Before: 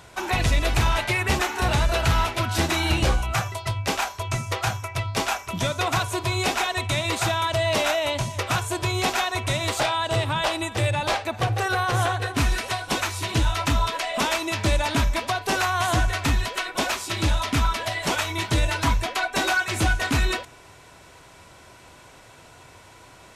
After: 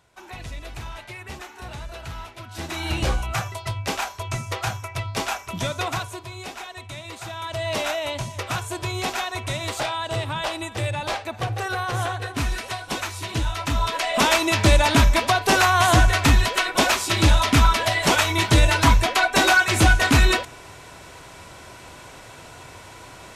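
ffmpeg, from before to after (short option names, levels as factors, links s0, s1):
-af "volume=6.68,afade=t=in:st=2.5:d=0.59:silence=0.223872,afade=t=out:st=5.8:d=0.46:silence=0.298538,afade=t=in:st=7.26:d=0.49:silence=0.354813,afade=t=in:st=13.67:d=0.66:silence=0.354813"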